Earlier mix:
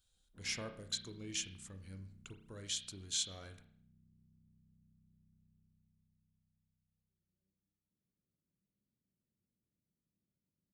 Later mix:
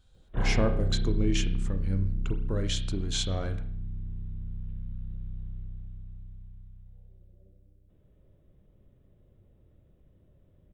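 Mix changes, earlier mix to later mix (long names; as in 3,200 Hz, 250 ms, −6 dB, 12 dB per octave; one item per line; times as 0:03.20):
background: remove resonant band-pass 210 Hz, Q 2.5
master: remove first-order pre-emphasis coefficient 0.9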